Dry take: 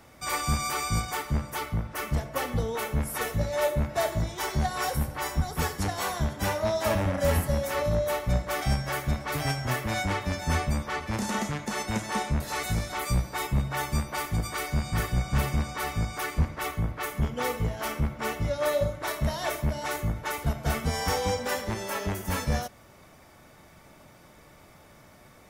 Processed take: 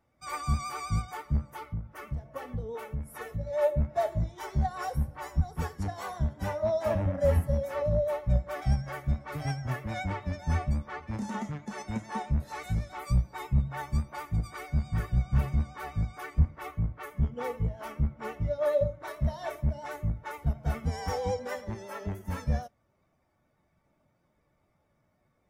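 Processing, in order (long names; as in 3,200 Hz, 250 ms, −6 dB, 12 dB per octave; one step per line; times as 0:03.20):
pitch vibrato 9.3 Hz 40 cents
0:01.51–0:03.47: downward compressor 5 to 1, threshold −27 dBFS, peak gain reduction 6 dB
every bin expanded away from the loudest bin 1.5 to 1
level +2 dB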